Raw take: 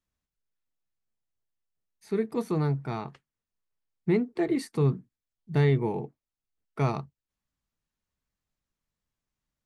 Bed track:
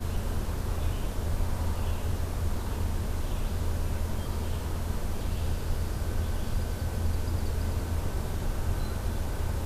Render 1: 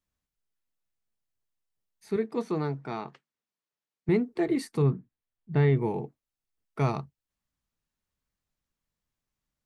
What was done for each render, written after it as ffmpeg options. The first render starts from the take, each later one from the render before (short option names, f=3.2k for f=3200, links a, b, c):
-filter_complex "[0:a]asettb=1/sr,asplit=3[a][b][c];[a]atrim=end=2.164[d];[b]atrim=start=2.16:end=4.09,asetpts=PTS-STARTPTS,afade=t=in:d=0.004:c=qsin,afade=t=out:st=1.926:d=0.004:c=qsin,highpass=200,lowpass=6.8k[e];[c]atrim=start=4.086[f];[d][e]acrossfade=d=0.004:c1=hsin:c2=qsin[g];[g][f]acrossfade=d=0.004:c1=qsin:c2=hsin,asettb=1/sr,asplit=3[h][i][j];[h]atrim=end=4.824[k];[i]atrim=start=4.82:end=5.77,asetpts=PTS-STARTPTS,afade=t=in:d=0.004:c=qsin,afade=t=out:st=0.946:d=0.004:c=qsin,lowpass=2.8k[l];[j]atrim=start=5.766[m];[k][l]acrossfade=d=0.004:c1=hsin:c2=qsin[n];[n][m]acrossfade=d=0.004:c1=qsin:c2=hsin"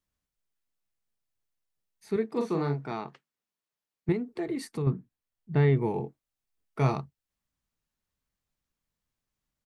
-filter_complex "[0:a]asplit=3[a][b][c];[a]afade=t=out:st=2.34:d=0.02[d];[b]asplit=2[e][f];[f]adelay=42,volume=-4.5dB[g];[e][g]amix=inputs=2:normalize=0,afade=t=in:st=2.34:d=0.02,afade=t=out:st=2.91:d=0.02[h];[c]afade=t=in:st=2.91:d=0.02[i];[d][h][i]amix=inputs=3:normalize=0,asettb=1/sr,asplit=3[j][k][l];[j]atrim=end=4.124[m];[k]atrim=start=4.12:end=4.87,asetpts=PTS-STARTPTS,afade=t=in:d=0.004:c=qsin,afade=t=out:st=0.746:d=0.004:c=qsin,acompressor=threshold=-32dB:ratio=2:attack=3.2:release=140:knee=1:detection=peak[n];[l]atrim=start=4.866[o];[m][n]acrossfade=d=0.004:c1=hsin:c2=qsin[p];[p][o]acrossfade=d=0.004:c1=qsin:c2=hsin,asettb=1/sr,asplit=3[q][r][s];[q]atrim=end=5.934[t];[r]atrim=start=5.93:end=6.94,asetpts=PTS-STARTPTS,afade=t=in:d=0.004:c=qsin,afade=t=out:st=1.006:d=0.004:c=qsin,asplit=2[u][v];[v]adelay=23,volume=-8dB[w];[u][w]amix=inputs=2:normalize=0,atrim=end_sample=44541[x];[s]atrim=start=6.936[y];[t][x]acrossfade=d=0.004:c1=hsin:c2=qsin[z];[z][y]acrossfade=d=0.004:c1=qsin:c2=hsin"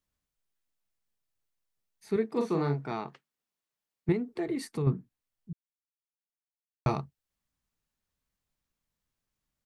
-filter_complex "[0:a]asplit=3[a][b][c];[a]atrim=end=5.53,asetpts=PTS-STARTPTS,afade=t=out:st=5.526:d=0.004:c=hsin[d];[b]atrim=start=5.53:end=6.86,asetpts=PTS-STARTPTS,volume=0[e];[c]atrim=start=6.86,asetpts=PTS-STARTPTS,afade=t=in:d=0.004:c=hsin[f];[d][e][f]concat=n=3:v=0:a=1"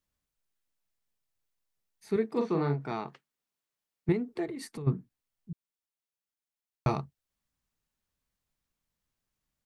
-filter_complex "[0:a]asettb=1/sr,asplit=3[a][b][c];[a]atrim=end=2.404[d];[b]atrim=start=2.4:end=2.81,asetpts=PTS-STARTPTS,afade=t=in:d=0.004:c=qsin,afade=t=out:st=0.406:d=0.004:c=qsin,lowpass=4.2k[e];[c]atrim=start=2.806[f];[d][e]acrossfade=d=0.004:c1=hsin:c2=qsin[g];[g][f]acrossfade=d=0.004:c1=qsin:c2=hsin,asplit=3[h][i][j];[h]afade=t=out:st=4.45:d=0.02[k];[i]acompressor=threshold=-36dB:ratio=5:attack=3.2:release=140:knee=1:detection=peak,afade=t=in:st=4.45:d=0.02,afade=t=out:st=4.86:d=0.02[l];[j]afade=t=in:st=4.86:d=0.02[m];[k][l][m]amix=inputs=3:normalize=0"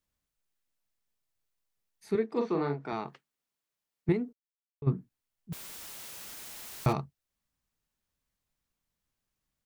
-filter_complex "[0:a]asettb=1/sr,asplit=3[a][b][c];[a]atrim=end=2.154[d];[b]atrim=start=2.15:end=2.93,asetpts=PTS-STARTPTS,afade=t=in:d=0.004:c=qsin,afade=t=out:st=0.776:d=0.004:c=qsin,highpass=200,lowpass=6.7k[e];[c]atrim=start=2.926[f];[d][e]acrossfade=d=0.004:c1=hsin:c2=qsin[g];[g][f]acrossfade=d=0.004:c1=qsin:c2=hsin,asettb=1/sr,asplit=3[h][i][j];[h]atrim=end=5.524[k];[i]atrim=start=5.52:end=6.93,asetpts=PTS-STARTPTS,afade=t=in:d=0.004:c=qsin,afade=t=out:st=1.406:d=0.004:c=qsin,aeval=exprs='val(0)+0.5*0.0178*sgn(val(0))':c=same[l];[j]atrim=start=6.926[m];[k][l]acrossfade=d=0.004:c1=hsin:c2=qsin[n];[n][m]acrossfade=d=0.004:c1=qsin:c2=hsin,asplit=3[o][p][q];[o]atrim=end=4.33,asetpts=PTS-STARTPTS,afade=t=out:st=4.326:d=0.004:c=hsin[r];[p]atrim=start=4.33:end=4.82,asetpts=PTS-STARTPTS,volume=0[s];[q]atrim=start=4.82,asetpts=PTS-STARTPTS,afade=t=in:d=0.004:c=hsin[t];[r][s][t]concat=n=3:v=0:a=1"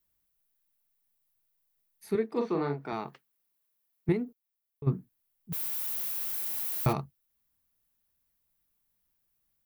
-af "aexciter=amount=3.3:drive=6.4:freq=10k"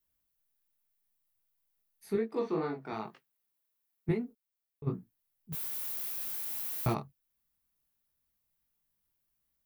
-af "flanger=delay=17.5:depth=2.6:speed=2.6"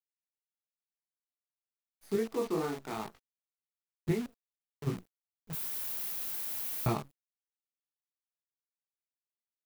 -af "acrusher=bits=8:dc=4:mix=0:aa=0.000001"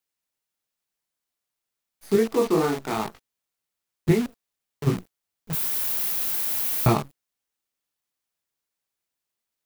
-af "volume=11dB"